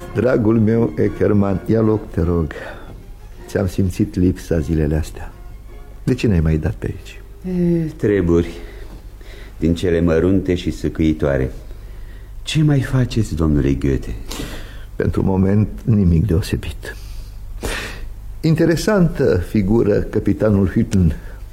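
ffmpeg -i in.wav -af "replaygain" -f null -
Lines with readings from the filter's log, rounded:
track_gain = -0.8 dB
track_peak = 0.406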